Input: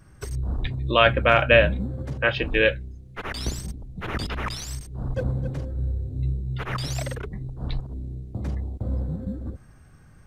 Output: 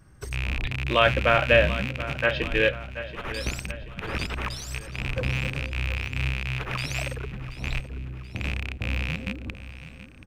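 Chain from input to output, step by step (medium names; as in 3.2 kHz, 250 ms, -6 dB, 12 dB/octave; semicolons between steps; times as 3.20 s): rattle on loud lows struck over -27 dBFS, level -15 dBFS; on a send: feedback delay 730 ms, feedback 50%, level -14 dB; on the sum: trim -2.5 dB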